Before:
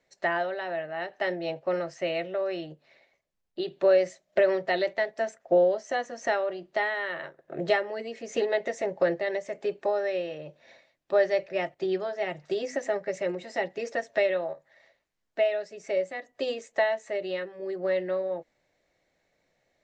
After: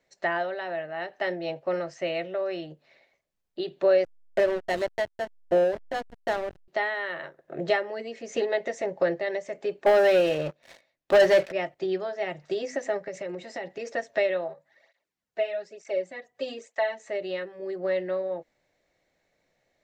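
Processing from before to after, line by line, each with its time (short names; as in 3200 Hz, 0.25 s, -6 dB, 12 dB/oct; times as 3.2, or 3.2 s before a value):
4.04–6.68 backlash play -24.5 dBFS
9.86–11.52 sample leveller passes 3
13.05–13.94 compressor 5:1, threshold -30 dBFS
14.48–17 tape flanging out of phase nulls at 1.1 Hz, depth 3.8 ms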